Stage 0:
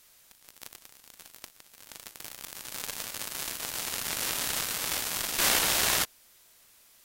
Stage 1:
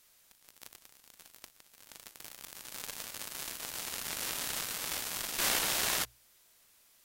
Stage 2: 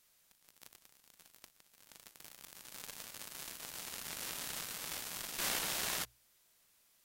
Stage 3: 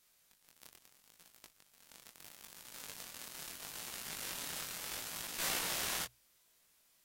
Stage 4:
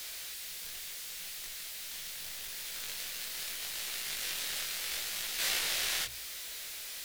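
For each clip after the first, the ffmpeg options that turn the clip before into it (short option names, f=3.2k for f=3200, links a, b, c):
-af "bandreject=f=60:t=h:w=6,bandreject=f=120:t=h:w=6,volume=-5.5dB"
-af "equalizer=f=170:t=o:w=0.6:g=3.5,volume=-6dB"
-af "flanger=delay=17:depth=7.6:speed=0.76,volume=3dB"
-af "aeval=exprs='val(0)+0.5*0.0119*sgn(val(0))':c=same,equalizer=f=125:t=o:w=1:g=-9,equalizer=f=250:t=o:w=1:g=-8,equalizer=f=1k:t=o:w=1:g=-6,equalizer=f=2k:t=o:w=1:g=4,equalizer=f=4k:t=o:w=1:g=5"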